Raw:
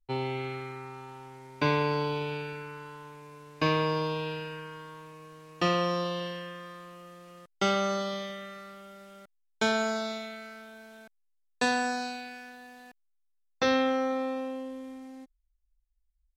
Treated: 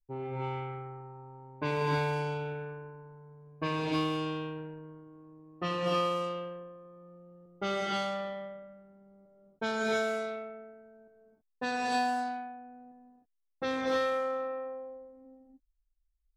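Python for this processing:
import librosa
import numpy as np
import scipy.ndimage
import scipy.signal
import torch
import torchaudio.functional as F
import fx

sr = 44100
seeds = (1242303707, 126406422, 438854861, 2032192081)

y = fx.wiener(x, sr, points=9)
y = fx.rev_gated(y, sr, seeds[0], gate_ms=350, shape='rising', drr_db=-2.5)
y = fx.env_lowpass(y, sr, base_hz=350.0, full_db=-20.0)
y = y * 10.0 ** (-7.0 / 20.0)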